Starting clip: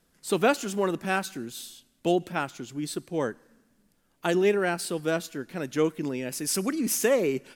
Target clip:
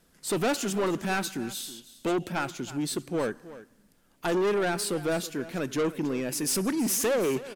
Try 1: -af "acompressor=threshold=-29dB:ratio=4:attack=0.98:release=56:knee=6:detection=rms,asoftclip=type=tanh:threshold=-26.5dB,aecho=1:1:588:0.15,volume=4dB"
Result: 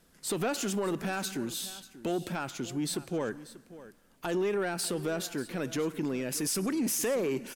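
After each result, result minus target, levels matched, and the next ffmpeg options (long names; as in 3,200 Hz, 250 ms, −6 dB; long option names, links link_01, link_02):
echo 267 ms late; downward compressor: peak gain reduction +13 dB
-af "acompressor=threshold=-29dB:ratio=4:attack=0.98:release=56:knee=6:detection=rms,asoftclip=type=tanh:threshold=-26.5dB,aecho=1:1:321:0.15,volume=4dB"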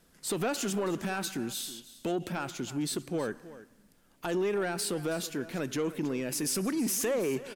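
downward compressor: peak gain reduction +13 dB
-af "asoftclip=type=tanh:threshold=-26.5dB,aecho=1:1:321:0.15,volume=4dB"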